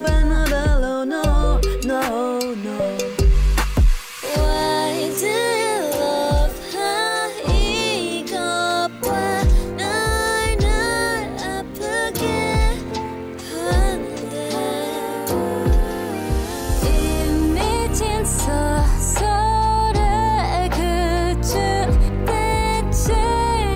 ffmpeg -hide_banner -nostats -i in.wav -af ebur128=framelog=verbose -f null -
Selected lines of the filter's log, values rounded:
Integrated loudness:
  I:         -20.3 LUFS
  Threshold: -30.4 LUFS
Loudness range:
  LRA:         3.7 LU
  Threshold: -40.5 LUFS
  LRA low:   -22.6 LUFS
  LRA high:  -18.9 LUFS